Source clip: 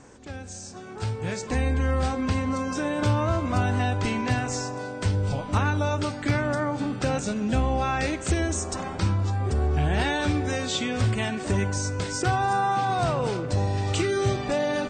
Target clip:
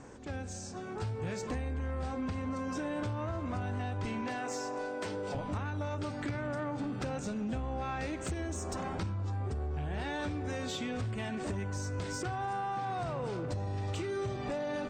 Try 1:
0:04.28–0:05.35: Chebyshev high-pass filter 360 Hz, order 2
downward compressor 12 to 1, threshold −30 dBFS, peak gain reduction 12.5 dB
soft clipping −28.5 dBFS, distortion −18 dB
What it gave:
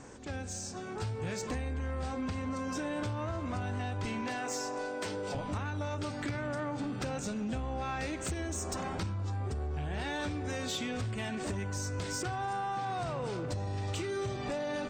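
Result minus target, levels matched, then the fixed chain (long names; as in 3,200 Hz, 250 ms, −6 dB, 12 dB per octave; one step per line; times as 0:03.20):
4,000 Hz band +3.5 dB
0:04.28–0:05.35: Chebyshev high-pass filter 360 Hz, order 2
downward compressor 12 to 1, threshold −30 dBFS, peak gain reduction 12.5 dB
high-shelf EQ 2,500 Hz −6 dB
soft clipping −28.5 dBFS, distortion −18 dB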